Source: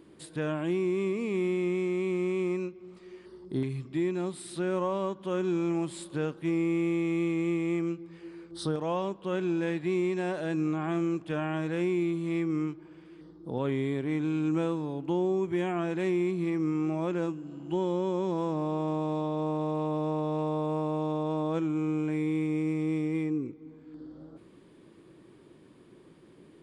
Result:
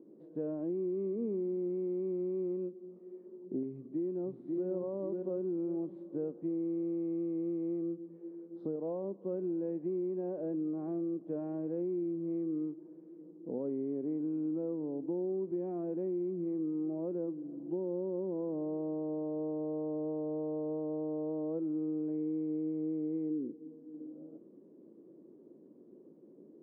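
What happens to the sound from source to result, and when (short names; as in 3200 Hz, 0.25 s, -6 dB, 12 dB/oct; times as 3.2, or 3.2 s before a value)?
1.15–1.7 LPF 2100 Hz
3.72–4.68 echo throw 0.54 s, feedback 45%, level -4 dB
whole clip: compressor, threshold -30 dBFS; Chebyshev band-pass 220–540 Hz, order 2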